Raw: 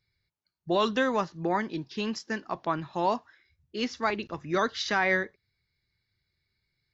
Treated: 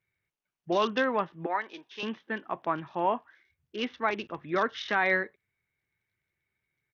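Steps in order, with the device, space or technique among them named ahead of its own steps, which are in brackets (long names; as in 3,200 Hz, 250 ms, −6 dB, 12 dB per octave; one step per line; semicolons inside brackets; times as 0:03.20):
0:01.46–0:02.03: high-pass filter 600 Hz 12 dB per octave
Bluetooth headset (high-pass filter 240 Hz 6 dB per octave; downsampling to 8,000 Hz; SBC 64 kbit/s 48,000 Hz)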